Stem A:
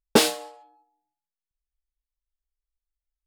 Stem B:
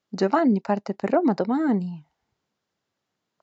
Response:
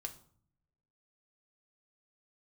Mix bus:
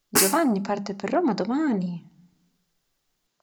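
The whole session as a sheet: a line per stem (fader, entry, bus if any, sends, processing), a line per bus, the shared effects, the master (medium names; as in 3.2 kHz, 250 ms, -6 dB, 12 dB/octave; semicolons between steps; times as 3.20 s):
+0.5 dB, 0.00 s, send -14 dB, static phaser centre 1.5 kHz, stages 4; comb 7.3 ms, depth 91%; auto duck -8 dB, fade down 0.25 s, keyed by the second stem
-4.0 dB, 0.00 s, send -4 dB, bass shelf 100 Hz +10.5 dB; hum notches 50/100/150/200 Hz; transient shaper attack -3 dB, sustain +1 dB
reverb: on, RT60 0.55 s, pre-delay 3 ms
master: treble shelf 2.9 kHz +11.5 dB; transformer saturation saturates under 950 Hz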